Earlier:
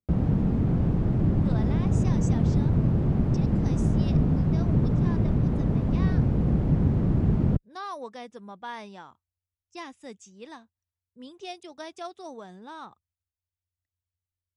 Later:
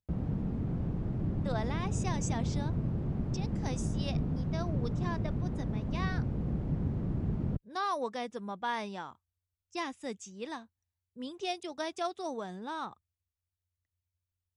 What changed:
speech +3.5 dB; background -10.0 dB

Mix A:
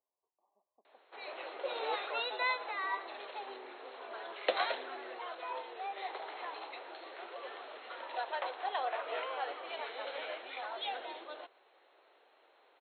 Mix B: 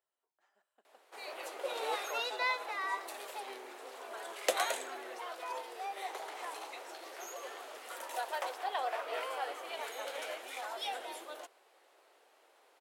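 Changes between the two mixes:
speech: remove brick-wall FIR low-pass 1.2 kHz; master: remove brick-wall FIR low-pass 4.3 kHz

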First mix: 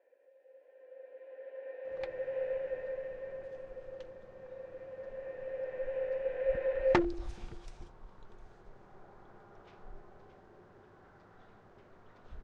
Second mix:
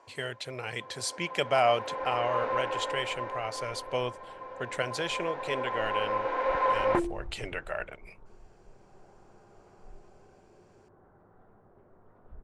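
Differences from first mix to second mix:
speech: unmuted; first sound: remove vowel filter e; second sound: add low-pass 1.1 kHz

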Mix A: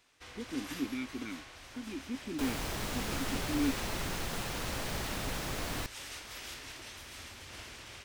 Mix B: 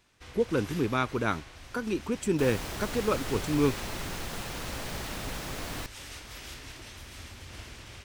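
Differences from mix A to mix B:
speech: remove vowel filter i; first sound: add bass shelf 240 Hz +9.5 dB

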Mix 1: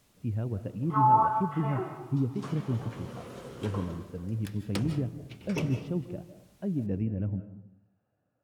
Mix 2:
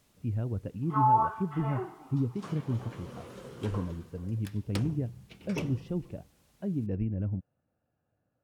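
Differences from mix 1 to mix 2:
speech: remove high-pass 84 Hz; reverb: off

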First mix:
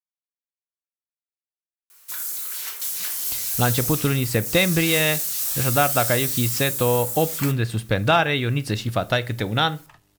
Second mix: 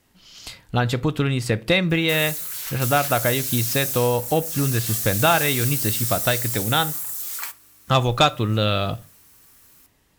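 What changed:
speech: entry -2.85 s; background: send -6.0 dB

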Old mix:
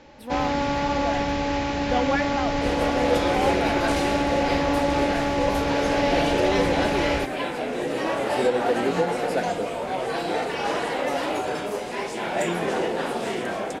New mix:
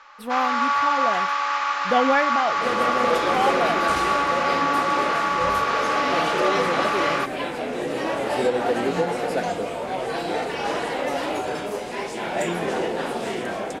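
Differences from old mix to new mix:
speech +5.0 dB; first sound: add resonant high-pass 1.2 kHz, resonance Q 9.9

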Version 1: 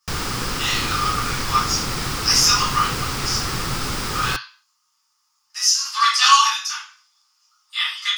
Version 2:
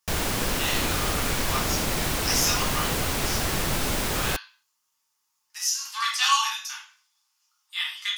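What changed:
speech: send -6.5 dB; master: add graphic EQ with 31 bands 125 Hz -7 dB, 630 Hz +9 dB, 1.25 kHz -9 dB, 5 kHz -7 dB, 12.5 kHz +9 dB

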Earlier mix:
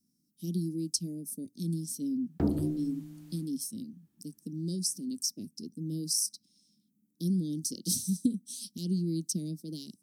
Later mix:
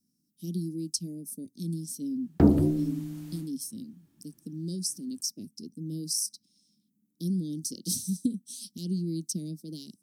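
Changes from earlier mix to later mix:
background +9.0 dB; reverb: off

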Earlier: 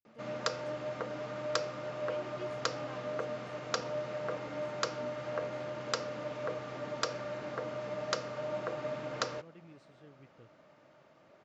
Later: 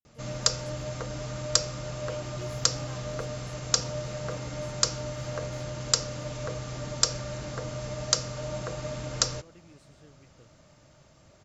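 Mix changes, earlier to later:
speech: remove distance through air 120 m; background: remove band-pass 270–2400 Hz

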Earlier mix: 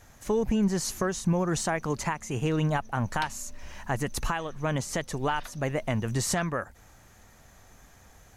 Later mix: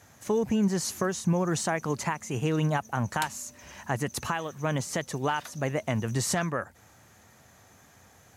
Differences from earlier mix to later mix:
background: remove Savitzky-Golay filter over 15 samples; master: add high-pass 83 Hz 24 dB/octave

